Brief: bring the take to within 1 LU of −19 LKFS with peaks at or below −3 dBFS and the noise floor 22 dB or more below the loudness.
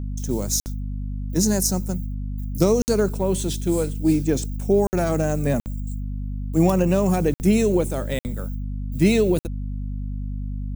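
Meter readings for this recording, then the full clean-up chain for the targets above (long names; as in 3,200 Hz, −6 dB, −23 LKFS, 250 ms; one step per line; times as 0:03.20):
number of dropouts 7; longest dropout 59 ms; mains hum 50 Hz; hum harmonics up to 250 Hz; level of the hum −26 dBFS; integrated loudness −23.0 LKFS; sample peak −4.5 dBFS; target loudness −19.0 LKFS
→ repair the gap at 0:00.60/0:02.82/0:04.87/0:05.60/0:07.34/0:08.19/0:09.39, 59 ms
hum removal 50 Hz, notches 5
level +4 dB
brickwall limiter −3 dBFS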